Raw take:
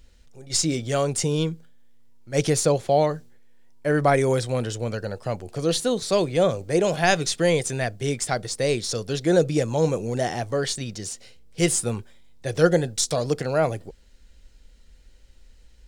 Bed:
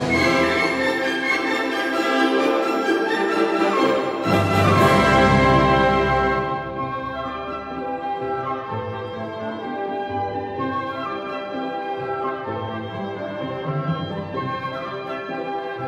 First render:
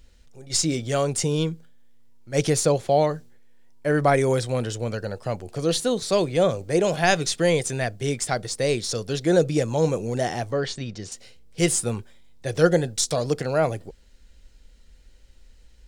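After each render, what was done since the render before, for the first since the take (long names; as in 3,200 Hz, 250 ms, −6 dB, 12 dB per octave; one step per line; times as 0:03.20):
0:10.52–0:11.12: high-frequency loss of the air 110 metres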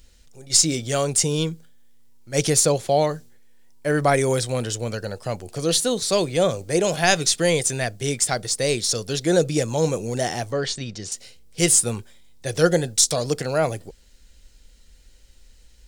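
high-shelf EQ 3,900 Hz +9.5 dB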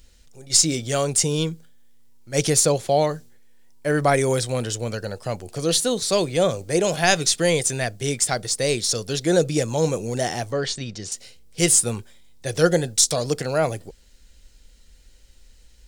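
no processing that can be heard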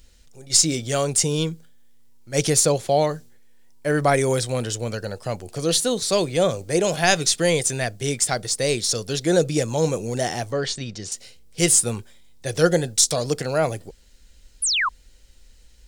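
0:14.62–0:14.89: sound drawn into the spectrogram fall 940–11,000 Hz −21 dBFS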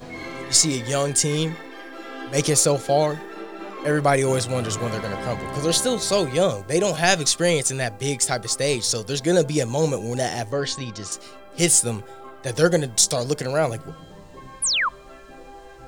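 mix in bed −16.5 dB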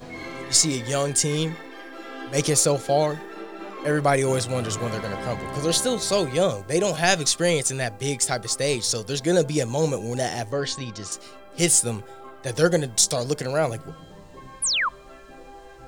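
level −1.5 dB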